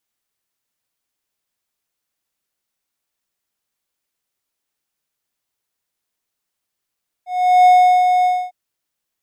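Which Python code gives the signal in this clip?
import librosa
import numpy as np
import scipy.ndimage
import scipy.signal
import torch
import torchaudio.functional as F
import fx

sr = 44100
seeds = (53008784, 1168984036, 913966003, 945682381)

y = fx.adsr_tone(sr, wave='triangle', hz=728.0, attack_ms=394.0, decay_ms=381.0, sustain_db=-5.5, held_s=0.99, release_ms=262.0, level_db=-4.0)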